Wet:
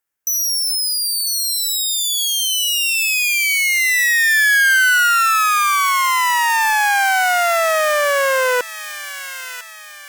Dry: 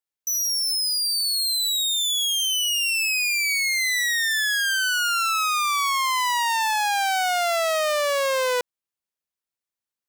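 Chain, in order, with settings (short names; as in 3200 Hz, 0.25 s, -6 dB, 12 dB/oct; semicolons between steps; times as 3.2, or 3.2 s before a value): fifteen-band EQ 1600 Hz +7 dB, 4000 Hz -7 dB, 16000 Hz +4 dB; thin delay 1 s, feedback 39%, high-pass 2200 Hz, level -9 dB; in parallel at -1 dB: compressor, threshold -30 dBFS, peak gain reduction 12.5 dB; on the sum: gain +3 dB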